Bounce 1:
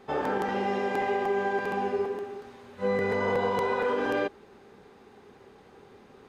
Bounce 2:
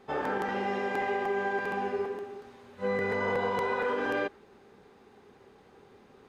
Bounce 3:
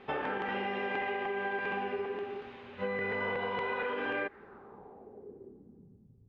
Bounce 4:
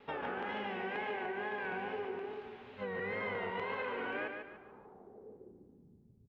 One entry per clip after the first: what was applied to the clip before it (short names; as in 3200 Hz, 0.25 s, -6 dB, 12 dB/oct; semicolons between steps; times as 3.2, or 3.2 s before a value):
dynamic EQ 1700 Hz, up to +4 dB, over -42 dBFS, Q 1.1; gain -3.5 dB
compressor, threshold -35 dBFS, peak gain reduction 9.5 dB; low-pass sweep 2800 Hz -> 110 Hz, 4.08–6.21; gain +2.5 dB
wow and flutter 110 cents; on a send: feedback echo 0.145 s, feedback 36%, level -5.5 dB; on the sum: gain -5.5 dB